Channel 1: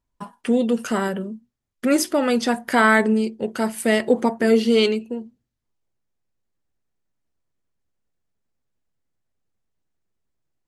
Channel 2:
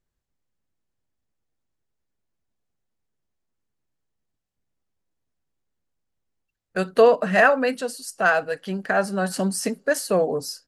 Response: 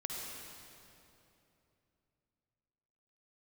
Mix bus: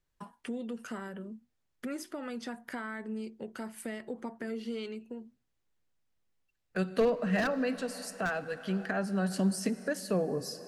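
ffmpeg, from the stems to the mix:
-filter_complex "[0:a]adynamicequalizer=threshold=0.0224:dfrequency=1500:dqfactor=1:tfrequency=1500:tqfactor=1:attack=5:release=100:ratio=0.375:range=3:mode=boostabove:tftype=bell,acompressor=threshold=0.0282:ratio=2,volume=0.355[s0];[1:a]equalizer=f=2600:t=o:w=2.5:g=5,aeval=exprs='0.447*(abs(mod(val(0)/0.447+3,4)-2)-1)':c=same,volume=0.631,asplit=2[s1][s2];[s2]volume=0.188[s3];[2:a]atrim=start_sample=2205[s4];[s3][s4]afir=irnorm=-1:irlink=0[s5];[s0][s1][s5]amix=inputs=3:normalize=0,acrossover=split=340[s6][s7];[s7]acompressor=threshold=0.00631:ratio=2[s8];[s6][s8]amix=inputs=2:normalize=0"

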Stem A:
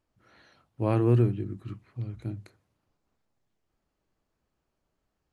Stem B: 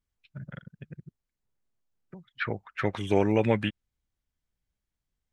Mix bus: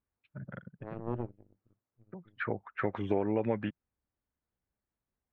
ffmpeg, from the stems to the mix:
-filter_complex "[0:a]aeval=exprs='0.251*(cos(1*acos(clip(val(0)/0.251,-1,1)))-cos(1*PI/2))+0.0794*(cos(3*acos(clip(val(0)/0.251,-1,1)))-cos(3*PI/2))+0.00251*(cos(8*acos(clip(val(0)/0.251,-1,1)))-cos(8*PI/2))':c=same,volume=0.316[s0];[1:a]highpass=f=150:p=1,acompressor=threshold=0.0355:ratio=4,volume=1.33[s1];[s0][s1]amix=inputs=2:normalize=0,lowpass=1400,equalizer=f=150:t=o:w=0.25:g=-6.5"

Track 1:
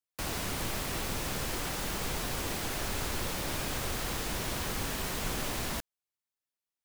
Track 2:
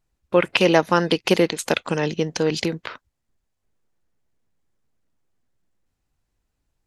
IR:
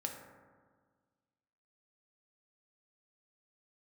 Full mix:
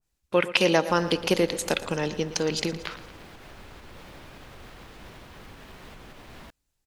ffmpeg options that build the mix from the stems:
-filter_complex "[0:a]acrossover=split=4100[s0][s1];[s1]acompressor=threshold=0.00251:ratio=4:attack=1:release=60[s2];[s0][s2]amix=inputs=2:normalize=0,alimiter=level_in=2.11:limit=0.0631:level=0:latency=1:release=236,volume=0.473,adelay=700,volume=0.531[s3];[1:a]highshelf=f=2600:g=10.5,volume=0.447,asplit=3[s4][s5][s6];[s5]volume=0.224[s7];[s6]volume=0.211[s8];[2:a]atrim=start_sample=2205[s9];[s7][s9]afir=irnorm=-1:irlink=0[s10];[s8]aecho=0:1:115|230|345|460|575|690|805:1|0.49|0.24|0.118|0.0576|0.0282|0.0138[s11];[s3][s4][s10][s11]amix=inputs=4:normalize=0,adynamicequalizer=threshold=0.0126:dfrequency=1500:dqfactor=0.7:tfrequency=1500:tqfactor=0.7:attack=5:release=100:ratio=0.375:range=3:mode=cutabove:tftype=highshelf"

